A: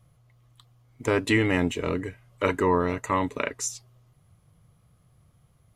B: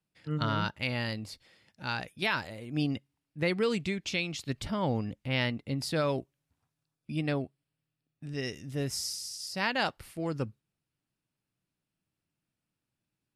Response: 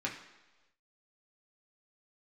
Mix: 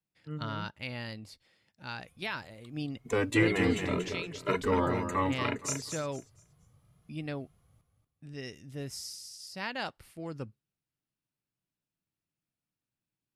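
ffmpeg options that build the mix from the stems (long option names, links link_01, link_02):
-filter_complex "[0:a]asplit=2[link_01][link_02];[link_02]adelay=2.4,afreqshift=2[link_03];[link_01][link_03]amix=inputs=2:normalize=1,adelay=2050,volume=-2dB,asplit=2[link_04][link_05];[link_05]volume=-7dB[link_06];[1:a]volume=-6.5dB[link_07];[link_06]aecho=0:1:234|468|702|936:1|0.26|0.0676|0.0176[link_08];[link_04][link_07][link_08]amix=inputs=3:normalize=0"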